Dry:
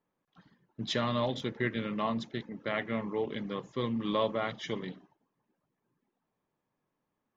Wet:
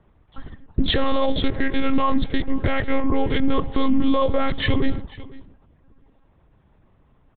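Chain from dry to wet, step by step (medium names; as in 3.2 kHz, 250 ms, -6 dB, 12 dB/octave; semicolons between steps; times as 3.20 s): 1.04–3.41 s: peaking EQ 100 Hz -10 dB 1.6 oct; monotone LPC vocoder at 8 kHz 270 Hz; compression 4:1, threshold -38 dBFS, peak gain reduction 11.5 dB; bass shelf 280 Hz +10.5 dB; delay 495 ms -21 dB; loudness maximiser +27.5 dB; trim -8.5 dB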